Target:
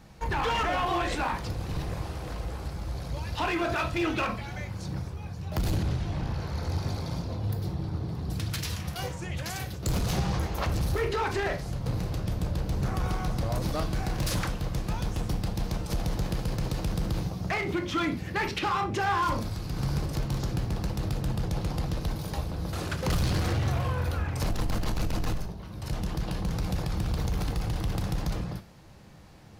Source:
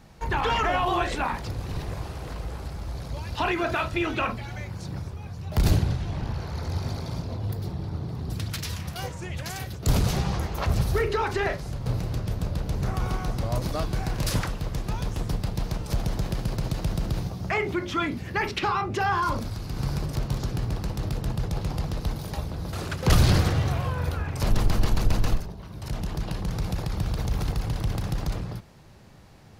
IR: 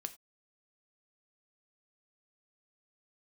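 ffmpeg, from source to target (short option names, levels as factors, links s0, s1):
-filter_complex "[0:a]alimiter=limit=0.141:level=0:latency=1:release=35,asoftclip=type=hard:threshold=0.075[s0];[1:a]atrim=start_sample=2205[s1];[s0][s1]afir=irnorm=-1:irlink=0,volume=1.26"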